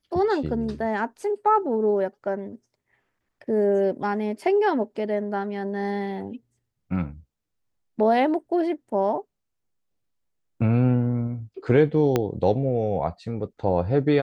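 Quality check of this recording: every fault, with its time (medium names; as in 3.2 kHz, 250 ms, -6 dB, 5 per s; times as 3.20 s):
12.16 s: pop -8 dBFS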